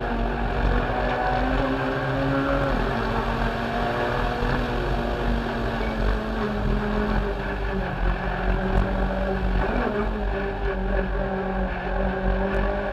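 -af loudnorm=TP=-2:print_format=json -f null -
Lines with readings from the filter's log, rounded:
"input_i" : "-25.6",
"input_tp" : "-9.8",
"input_lra" : "2.0",
"input_thresh" : "-35.6",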